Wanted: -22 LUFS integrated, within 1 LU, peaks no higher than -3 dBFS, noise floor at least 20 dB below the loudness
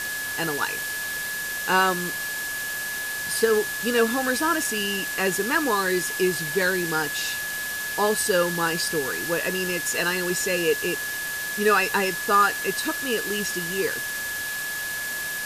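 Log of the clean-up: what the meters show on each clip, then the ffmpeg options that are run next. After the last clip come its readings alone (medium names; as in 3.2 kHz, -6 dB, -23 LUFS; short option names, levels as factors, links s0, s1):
steady tone 1.7 kHz; tone level -29 dBFS; noise floor -30 dBFS; noise floor target -44 dBFS; loudness -24.0 LUFS; peak level -7.5 dBFS; loudness target -22.0 LUFS
-> -af "bandreject=f=1700:w=30"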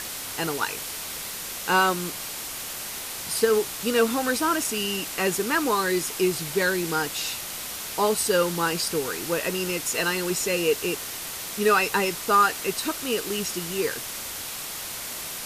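steady tone not found; noise floor -35 dBFS; noise floor target -45 dBFS
-> -af "afftdn=nr=10:nf=-35"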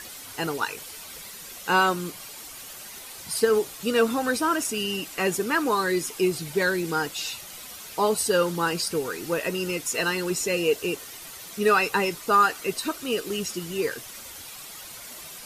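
noise floor -42 dBFS; noise floor target -45 dBFS
-> -af "afftdn=nr=6:nf=-42"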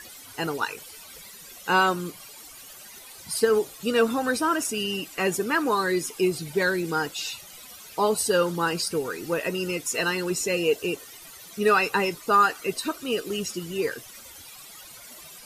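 noise floor -46 dBFS; loudness -25.5 LUFS; peak level -8.0 dBFS; loudness target -22.0 LUFS
-> -af "volume=1.5"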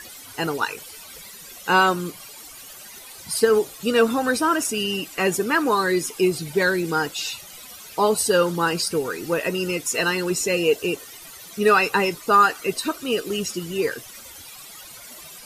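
loudness -22.0 LUFS; peak level -4.5 dBFS; noise floor -42 dBFS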